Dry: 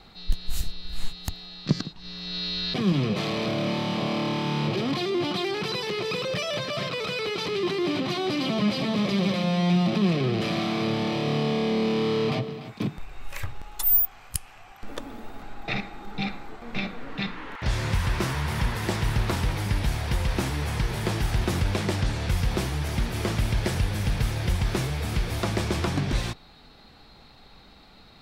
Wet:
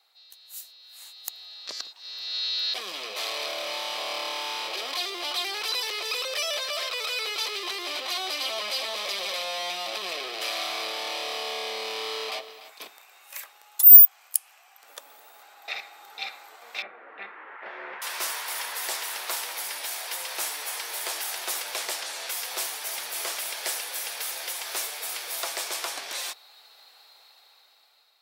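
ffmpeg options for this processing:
-filter_complex "[0:a]asettb=1/sr,asplit=3[s0][s1][s2];[s0]atrim=end=16.824[s3];[s1]atrim=start=16.82:end=18.02,asetpts=PTS-STARTPTS,afade=t=in:d=0.004:c=qsin,afade=t=out:st=1.196:d=0.004:c=qsin,highpass=140,equalizer=f=210:t=q:w=4:g=9,equalizer=f=360:t=q:w=4:g=10,equalizer=f=1000:t=q:w=4:g=-3,lowpass=f=2000:w=0.5412,lowpass=f=2000:w=1.3066[s4];[s2]atrim=start=18.016[s5];[s3][s4]acrossfade=d=0.004:c1=hsin:c2=qsin[s6];[s6][s5]acrossfade=d=0.004:c1=qsin:c2=hsin,highpass=f=550:w=0.5412,highpass=f=550:w=1.3066,dynaudnorm=f=390:g=7:m=5.62,aemphasis=mode=production:type=75fm,volume=0.15"

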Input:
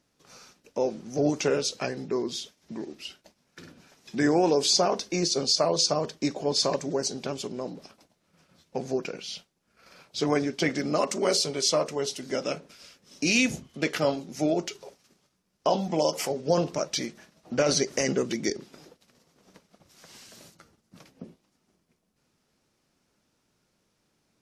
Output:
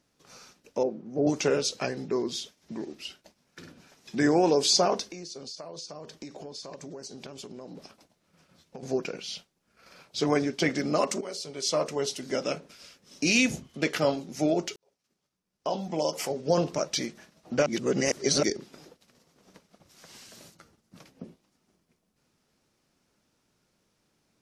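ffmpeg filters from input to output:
-filter_complex "[0:a]asettb=1/sr,asplit=3[s0][s1][s2];[s0]atrim=end=0.834[s3];[s1]atrim=start=0.83:end=1.27,asetpts=PTS-STARTPTS,afade=t=in:d=0.004:c=qsin,afade=t=out:st=0.436:d=0.004:c=qsin,bandpass=f=310:t=q:w=0.62[s4];[s2]atrim=start=1.266[s5];[s3][s4]acrossfade=d=0.004:c1=hsin:c2=qsin[s6];[s6][s5]acrossfade=d=0.004:c1=qsin:c2=hsin,asettb=1/sr,asplit=3[s7][s8][s9];[s7]atrim=end=5.074[s10];[s8]atrim=start=5.07:end=8.83,asetpts=PTS-STARTPTS,afade=t=in:d=0.004:c=qsin,afade=t=out:st=3.756:d=0.004:c=qsin,acompressor=threshold=0.0126:ratio=8:attack=3.2:release=140:knee=1:detection=peak[s11];[s9]atrim=start=8.826[s12];[s10][s11]acrossfade=d=0.004:c1=hsin:c2=qsin[s13];[s13][s12]acrossfade=d=0.004:c1=qsin:c2=hsin,asplit=5[s14][s15][s16][s17][s18];[s14]atrim=end=11.21,asetpts=PTS-STARTPTS,afade=t=out:st=11.206:d=0.004:c=hsin:silence=0.188365[s19];[s15]atrim=start=11.21:end=14.76,asetpts=PTS-STARTPTS,afade=t=in:d=0.65:c=qua:silence=0.188365,afade=t=out:st=3.546:d=0.004:c=hsin[s20];[s16]atrim=start=14.76:end=17.662,asetpts=PTS-STARTPTS,afade=t=in:d=1.89[s21];[s17]atrim=start=17.658:end=18.432,asetpts=PTS-STARTPTS,areverse[s22];[s18]atrim=start=18.428[s23];[s19][s20][s21]concat=n=3:v=0:a=1[s24];[s24][s22]acrossfade=d=0.004:c1=hsin:c2=hsin[s25];[s25][s23]acrossfade=d=0.004:c1=hsin:c2=hsin"

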